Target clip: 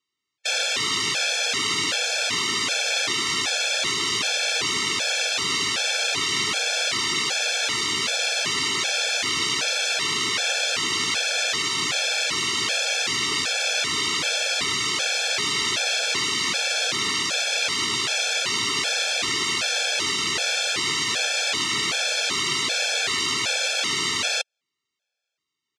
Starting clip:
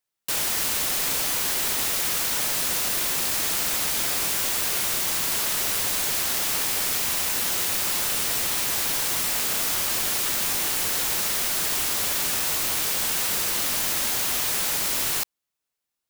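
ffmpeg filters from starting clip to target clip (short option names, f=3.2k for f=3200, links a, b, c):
-af "asetrate=27518,aresample=44100,highpass=130,equalizer=f=200:t=q:w=4:g=-5,equalizer=f=870:t=q:w=4:g=-5,equalizer=f=2.4k:t=q:w=4:g=5,equalizer=f=3.5k:t=q:w=4:g=4,lowpass=f=6.7k:w=0.5412,lowpass=f=6.7k:w=1.3066,afftfilt=real='re*gt(sin(2*PI*1.3*pts/sr)*(1-2*mod(floor(b*sr/1024/450),2)),0)':imag='im*gt(sin(2*PI*1.3*pts/sr)*(1-2*mod(floor(b*sr/1024/450),2)),0)':win_size=1024:overlap=0.75,volume=5.5dB"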